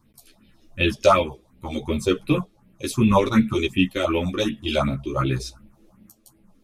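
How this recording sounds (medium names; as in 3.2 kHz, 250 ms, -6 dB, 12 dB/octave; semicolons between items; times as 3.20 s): phasing stages 4, 2.7 Hz, lowest notch 140–1200 Hz; tremolo saw up 0.82 Hz, depth 50%; a shimmering, thickened sound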